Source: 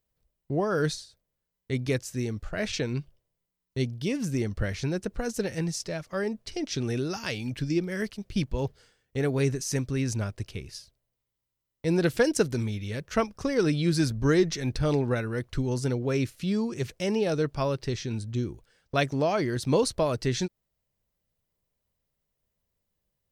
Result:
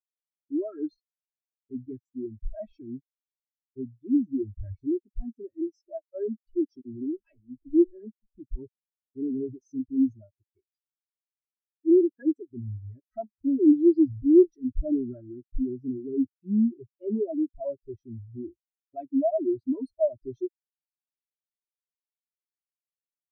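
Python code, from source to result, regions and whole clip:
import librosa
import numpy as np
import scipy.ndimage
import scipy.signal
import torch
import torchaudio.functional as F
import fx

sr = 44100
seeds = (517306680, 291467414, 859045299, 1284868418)

y = fx.chain(x, sr, fx.backlash(play_db=-27.5),
    fx.dispersion(late='lows', ms=51.0, hz=510.0), at=(6.81, 8.38))
y = fx.chain(y, sr, fx.highpass(hz=220.0, slope=6),
    fx.high_shelf(hz=2200.0, db=-4.5), at=(10.14, 12.51))
y = y + 0.82 * np.pad(y, (int(3.1 * sr / 1000.0), 0))[:len(y)]
y = fx.leveller(y, sr, passes=5)
y = fx.spectral_expand(y, sr, expansion=4.0)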